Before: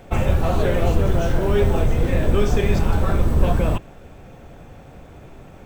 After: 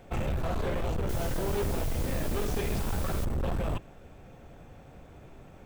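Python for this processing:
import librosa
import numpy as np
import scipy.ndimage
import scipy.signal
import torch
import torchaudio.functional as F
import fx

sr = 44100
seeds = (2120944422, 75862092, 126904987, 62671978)

y = np.clip(x, -10.0 ** (-18.5 / 20.0), 10.0 ** (-18.5 / 20.0))
y = fx.quant_dither(y, sr, seeds[0], bits=6, dither='triangular', at=(1.09, 3.25))
y = y * librosa.db_to_amplitude(-8.0)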